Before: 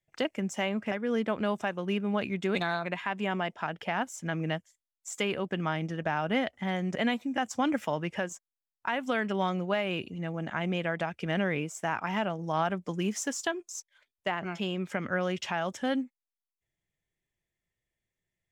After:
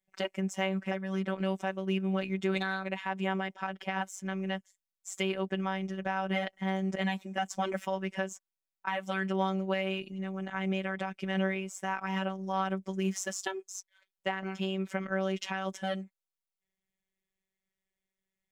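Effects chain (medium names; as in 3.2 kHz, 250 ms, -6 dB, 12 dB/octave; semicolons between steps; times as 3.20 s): robot voice 191 Hz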